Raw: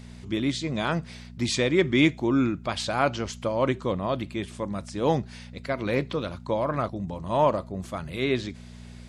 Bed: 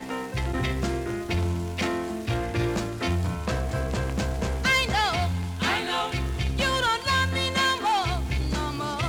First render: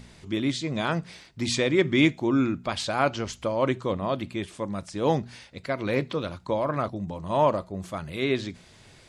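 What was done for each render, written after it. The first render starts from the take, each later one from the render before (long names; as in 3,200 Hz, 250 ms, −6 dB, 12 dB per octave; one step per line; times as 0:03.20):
hum removal 60 Hz, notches 4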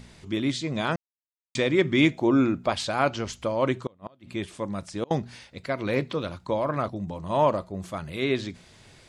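0:00.96–0:01.55: silence
0:02.12–0:02.74: parametric band 580 Hz +6.5 dB 1.5 octaves
0:03.86–0:05.11: gate with flip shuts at −18 dBFS, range −30 dB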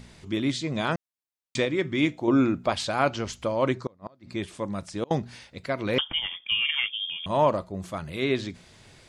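0:01.65–0:02.28: tuned comb filter 100 Hz, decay 0.18 s, harmonics odd, mix 50%
0:03.74–0:04.36: drawn EQ curve 2,100 Hz 0 dB, 3,100 Hz −11 dB, 4,700 Hz +7 dB, 9,400 Hz −7 dB
0:05.98–0:07.26: voice inversion scrambler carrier 3,400 Hz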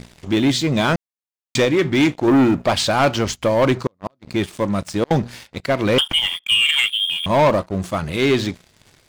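leveller curve on the samples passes 3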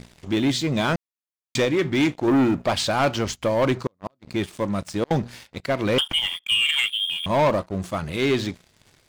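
level −4.5 dB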